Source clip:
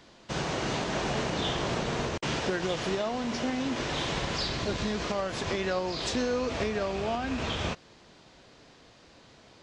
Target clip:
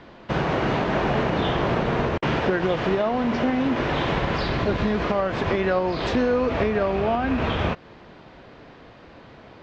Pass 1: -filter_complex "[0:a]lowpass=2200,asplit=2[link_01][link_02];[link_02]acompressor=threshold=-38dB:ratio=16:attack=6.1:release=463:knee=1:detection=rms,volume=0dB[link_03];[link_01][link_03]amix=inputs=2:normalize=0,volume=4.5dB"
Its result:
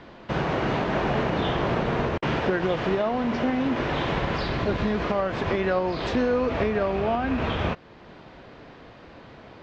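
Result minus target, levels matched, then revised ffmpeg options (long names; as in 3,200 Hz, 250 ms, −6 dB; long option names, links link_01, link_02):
downward compressor: peak gain reduction +8 dB
-filter_complex "[0:a]lowpass=2200,asplit=2[link_01][link_02];[link_02]acompressor=threshold=-29.5dB:ratio=16:attack=6.1:release=463:knee=1:detection=rms,volume=0dB[link_03];[link_01][link_03]amix=inputs=2:normalize=0,volume=4.5dB"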